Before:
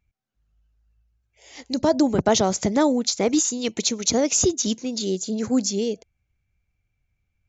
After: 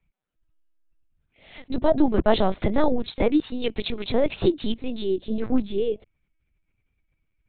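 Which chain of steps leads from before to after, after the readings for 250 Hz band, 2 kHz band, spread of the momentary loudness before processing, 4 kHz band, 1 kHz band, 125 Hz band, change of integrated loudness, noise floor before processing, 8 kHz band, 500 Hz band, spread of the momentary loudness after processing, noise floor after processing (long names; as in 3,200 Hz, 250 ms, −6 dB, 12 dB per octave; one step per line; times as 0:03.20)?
−2.0 dB, −1.0 dB, 7 LU, −7.0 dB, −1.5 dB, −0.5 dB, −3.0 dB, −77 dBFS, can't be measured, 0.0 dB, 9 LU, −76 dBFS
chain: linear-prediction vocoder at 8 kHz pitch kept
level +1 dB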